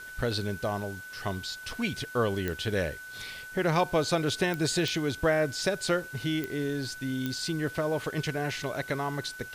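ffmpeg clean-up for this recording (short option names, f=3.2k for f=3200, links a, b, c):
-af "adeclick=t=4,bandreject=f=1.5k:w=30,afwtdn=0.0025"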